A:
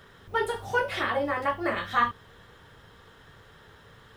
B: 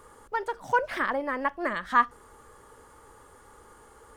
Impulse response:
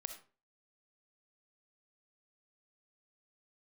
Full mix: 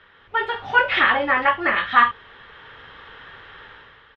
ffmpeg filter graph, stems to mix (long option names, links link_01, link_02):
-filter_complex "[0:a]acrusher=bits=10:mix=0:aa=0.000001,tiltshelf=frequency=800:gain=-10,volume=-2.5dB[link_01];[1:a]adelay=3.4,volume=-9dB[link_02];[link_01][link_02]amix=inputs=2:normalize=0,dynaudnorm=framelen=140:gausssize=7:maxgain=10.5dB,lowpass=frequency=3000:width=0.5412,lowpass=frequency=3000:width=1.3066"